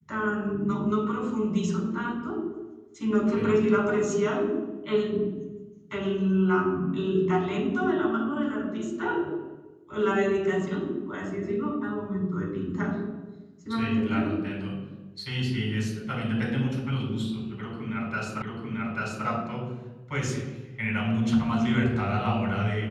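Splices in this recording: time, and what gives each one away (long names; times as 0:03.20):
0:18.42: the same again, the last 0.84 s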